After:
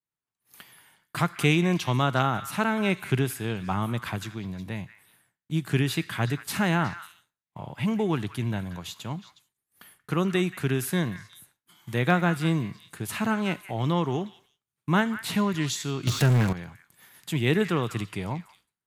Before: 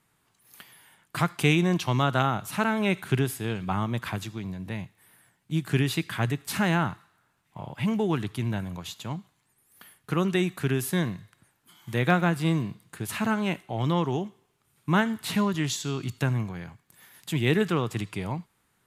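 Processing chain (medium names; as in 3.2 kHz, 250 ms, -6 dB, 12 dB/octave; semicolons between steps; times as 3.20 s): repeats whose band climbs or falls 182 ms, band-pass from 1.7 kHz, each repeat 1.4 oct, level -10 dB; expander -53 dBFS; 16.07–16.53 s: power-law waveshaper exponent 0.5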